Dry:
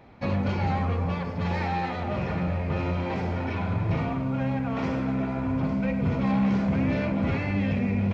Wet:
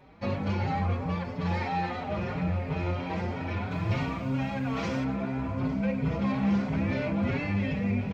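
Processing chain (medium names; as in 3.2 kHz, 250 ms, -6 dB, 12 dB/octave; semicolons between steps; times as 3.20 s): treble shelf 2.8 kHz +2 dB, from 3.71 s +12 dB, from 5.04 s +3 dB; endless flanger 5 ms +3 Hz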